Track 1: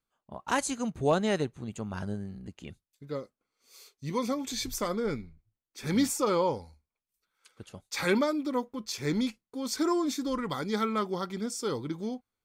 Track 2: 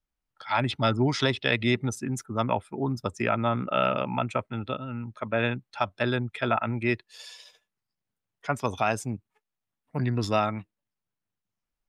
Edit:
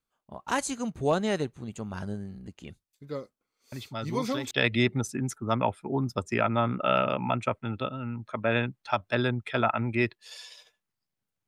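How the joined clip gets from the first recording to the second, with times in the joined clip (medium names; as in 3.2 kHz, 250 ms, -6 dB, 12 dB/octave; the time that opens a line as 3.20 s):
track 1
3.72 s: add track 2 from 0.60 s 0.79 s -11.5 dB
4.51 s: go over to track 2 from 1.39 s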